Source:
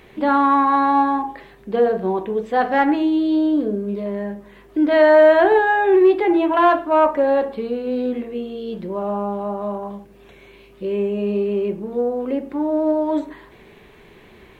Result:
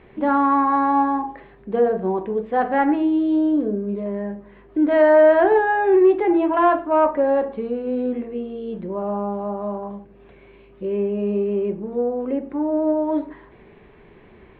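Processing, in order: air absorption 490 m

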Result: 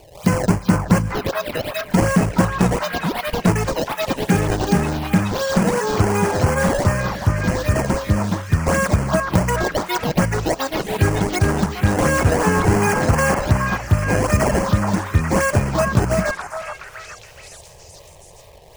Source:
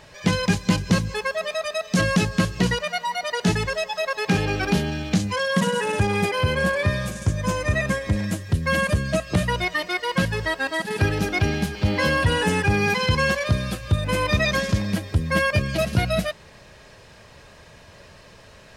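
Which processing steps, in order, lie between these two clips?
decimation with a swept rate 22×, swing 160% 2.7 Hz; envelope phaser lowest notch 210 Hz, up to 3700 Hz, full sweep at -19 dBFS; delay with a stepping band-pass 0.421 s, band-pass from 1100 Hz, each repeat 0.7 oct, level -0.5 dB; gain +4.5 dB

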